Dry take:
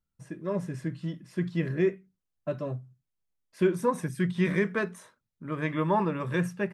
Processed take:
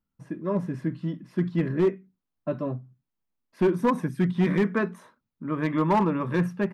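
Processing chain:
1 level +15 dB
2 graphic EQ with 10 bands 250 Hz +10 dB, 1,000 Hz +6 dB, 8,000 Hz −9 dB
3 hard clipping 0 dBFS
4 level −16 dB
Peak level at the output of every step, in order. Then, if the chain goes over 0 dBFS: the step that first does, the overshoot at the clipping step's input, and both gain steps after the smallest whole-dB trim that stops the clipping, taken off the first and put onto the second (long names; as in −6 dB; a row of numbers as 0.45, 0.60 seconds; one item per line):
+3.0, +7.5, 0.0, −16.0 dBFS
step 1, 7.5 dB
step 1 +7 dB, step 4 −8 dB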